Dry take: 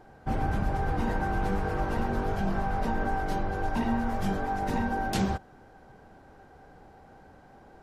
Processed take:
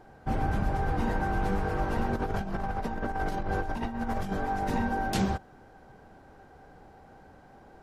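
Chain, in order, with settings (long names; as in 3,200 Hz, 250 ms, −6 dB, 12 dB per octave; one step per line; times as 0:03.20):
0:02.13–0:04.32: compressor whose output falls as the input rises −30 dBFS, ratio −0.5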